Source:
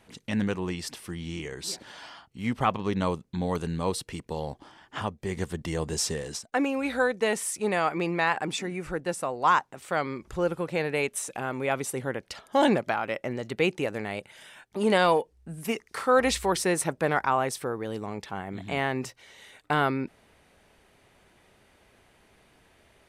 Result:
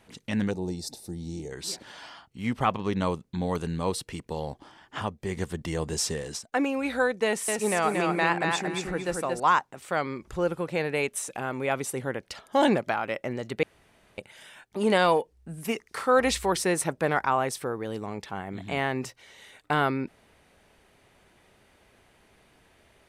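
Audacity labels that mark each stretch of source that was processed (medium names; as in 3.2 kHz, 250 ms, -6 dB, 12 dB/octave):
0.510000	1.520000	time-frequency box 910–3500 Hz -18 dB
7.250000	9.400000	feedback delay 230 ms, feedback 24%, level -3.5 dB
13.630000	14.180000	room tone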